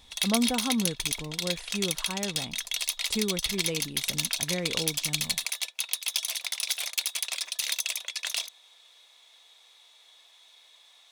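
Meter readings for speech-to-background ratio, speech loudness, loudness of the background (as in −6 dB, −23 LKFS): −4.5 dB, −33.5 LKFS, −29.0 LKFS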